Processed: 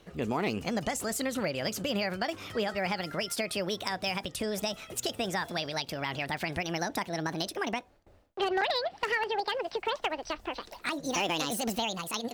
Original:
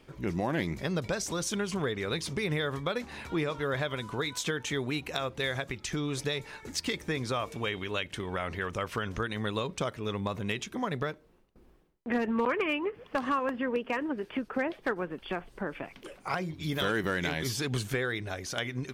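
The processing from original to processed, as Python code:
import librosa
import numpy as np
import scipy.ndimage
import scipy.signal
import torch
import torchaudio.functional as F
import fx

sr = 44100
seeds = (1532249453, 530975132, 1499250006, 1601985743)

y = fx.speed_glide(x, sr, from_pct=124, to_pct=183)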